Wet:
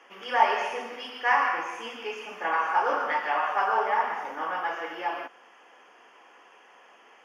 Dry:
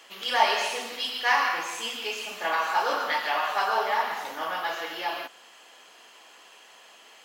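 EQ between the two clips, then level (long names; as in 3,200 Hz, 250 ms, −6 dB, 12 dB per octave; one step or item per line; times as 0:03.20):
moving average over 11 samples
high-pass filter 200 Hz 12 dB per octave
notch filter 640 Hz, Q 12
+2.0 dB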